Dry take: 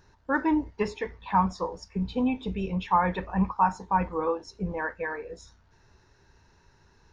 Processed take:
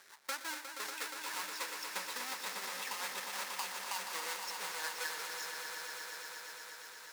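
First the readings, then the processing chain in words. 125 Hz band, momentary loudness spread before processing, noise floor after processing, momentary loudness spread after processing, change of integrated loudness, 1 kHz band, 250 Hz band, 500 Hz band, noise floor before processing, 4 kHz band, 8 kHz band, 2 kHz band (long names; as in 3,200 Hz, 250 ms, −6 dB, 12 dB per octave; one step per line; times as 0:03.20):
below −35 dB, 9 LU, −52 dBFS, 5 LU, −11.5 dB, −15.5 dB, −30.5 dB, −18.0 dB, −62 dBFS, +7.0 dB, can't be measured, −4.0 dB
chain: each half-wave held at its own peak
high-pass filter 1,300 Hz 12 dB per octave
parametric band 2,900 Hz −6 dB 0.47 octaves
brickwall limiter −18 dBFS, peak gain reduction 11 dB
downward compressor 3 to 1, threshold −51 dBFS, peak gain reduction 17.5 dB
rotating-speaker cabinet horn 5.5 Hz
echo that builds up and dies away 119 ms, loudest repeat 5, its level −8.5 dB
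level +10.5 dB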